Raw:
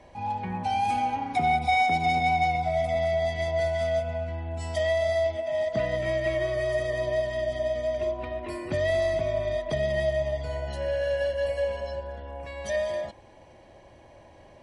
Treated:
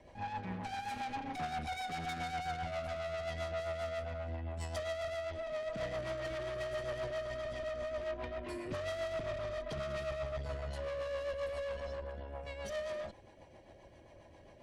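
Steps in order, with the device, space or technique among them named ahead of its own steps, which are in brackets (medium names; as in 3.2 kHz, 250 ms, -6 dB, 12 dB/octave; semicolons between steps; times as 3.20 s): overdriven rotary cabinet (valve stage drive 33 dB, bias 0.55; rotary cabinet horn 7.5 Hz); trim -1 dB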